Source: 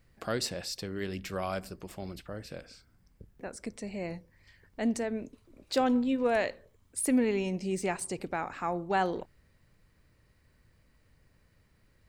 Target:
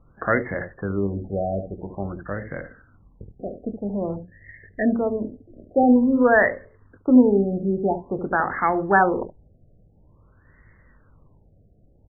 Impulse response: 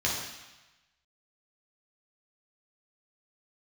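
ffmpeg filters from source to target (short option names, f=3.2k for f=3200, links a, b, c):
-filter_complex "[0:a]asettb=1/sr,asplit=3[a][b][c];[a]atrim=end=4.164[d];[b]atrim=start=4.16:end=4.95,asetpts=PTS-STARTPTS,afade=t=in:d=0.004:c=qsin,afade=t=out:st=0.786:d=0.004:c=qsin,asuperstop=centerf=1100:order=20:qfactor=1.2[e];[c]atrim=start=4.946[f];[d][e]acrossfade=d=0.004:c1=hsin:c2=qsin[g];[g][f]acrossfade=d=0.004:c1=qsin:c2=hsin,acrossover=split=700[h][i];[h]aecho=1:1:20|71:0.473|0.473[j];[i]crystalizer=i=9:c=0[k];[j][k]amix=inputs=2:normalize=0,alimiter=level_in=8dB:limit=-1dB:release=50:level=0:latency=1,afftfilt=real='re*lt(b*sr/1024,740*pow(2200/740,0.5+0.5*sin(2*PI*0.49*pts/sr)))':imag='im*lt(b*sr/1024,740*pow(2200/740,0.5+0.5*sin(2*PI*0.49*pts/sr)))':win_size=1024:overlap=0.75,volume=1dB"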